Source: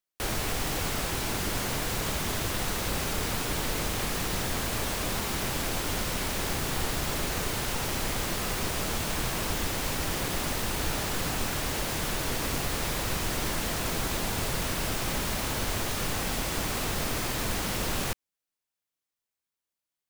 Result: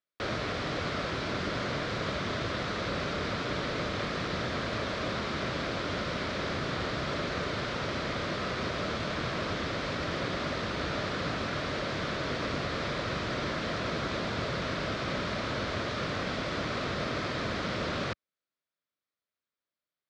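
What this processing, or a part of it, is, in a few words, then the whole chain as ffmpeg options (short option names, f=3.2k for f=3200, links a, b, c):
guitar cabinet: -af "highpass=91,equalizer=f=590:t=q:w=4:g=5,equalizer=f=840:t=q:w=4:g=-8,equalizer=f=1.3k:t=q:w=4:g=4,equalizer=f=2.8k:t=q:w=4:g=-5,lowpass=f=4.4k:w=0.5412,lowpass=f=4.4k:w=1.3066"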